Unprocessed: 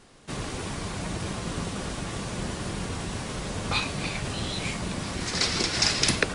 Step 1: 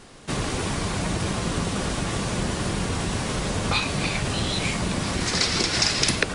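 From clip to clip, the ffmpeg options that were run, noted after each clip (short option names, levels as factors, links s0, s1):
-af "acompressor=threshold=0.0316:ratio=2,volume=2.37"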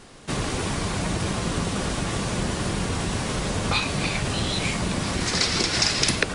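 -af anull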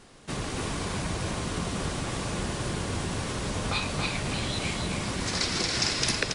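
-af "aecho=1:1:278:0.596,volume=0.501"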